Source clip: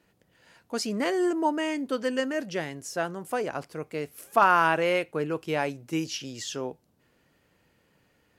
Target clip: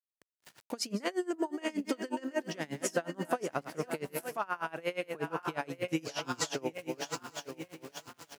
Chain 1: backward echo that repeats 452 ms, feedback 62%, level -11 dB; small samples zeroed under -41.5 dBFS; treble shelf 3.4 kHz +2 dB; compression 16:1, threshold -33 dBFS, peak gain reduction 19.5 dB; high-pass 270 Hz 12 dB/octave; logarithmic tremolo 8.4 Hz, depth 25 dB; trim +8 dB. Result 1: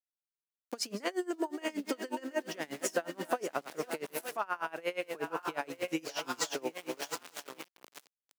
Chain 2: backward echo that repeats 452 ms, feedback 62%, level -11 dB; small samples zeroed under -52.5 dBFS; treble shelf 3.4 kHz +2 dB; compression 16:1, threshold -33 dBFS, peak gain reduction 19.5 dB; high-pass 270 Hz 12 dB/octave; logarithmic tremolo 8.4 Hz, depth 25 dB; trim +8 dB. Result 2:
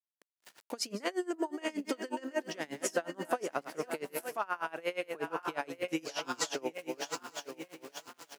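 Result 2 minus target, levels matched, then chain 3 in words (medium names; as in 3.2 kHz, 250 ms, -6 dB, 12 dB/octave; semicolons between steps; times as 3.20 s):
125 Hz band -8.0 dB
backward echo that repeats 452 ms, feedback 62%, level -11 dB; small samples zeroed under -52.5 dBFS; treble shelf 3.4 kHz +2 dB; compression 16:1, threshold -33 dBFS, peak gain reduction 19.5 dB; high-pass 85 Hz 12 dB/octave; logarithmic tremolo 8.4 Hz, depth 25 dB; trim +8 dB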